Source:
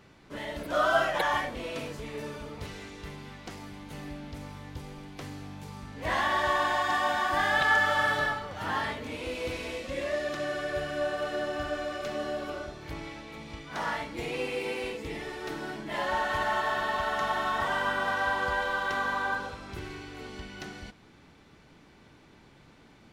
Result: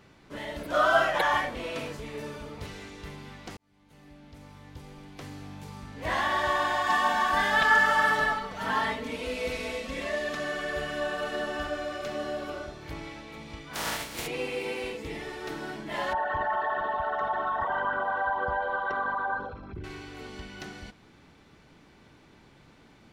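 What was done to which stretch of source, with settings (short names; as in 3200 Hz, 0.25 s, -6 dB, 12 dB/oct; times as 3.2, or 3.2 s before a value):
0.74–1.97 bell 1400 Hz +3 dB 2.7 oct
3.57–5.55 fade in
6.86–11.67 comb 4.5 ms, depth 78%
13.73–14.26 spectral contrast lowered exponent 0.41
16.13–19.84 formant sharpening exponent 2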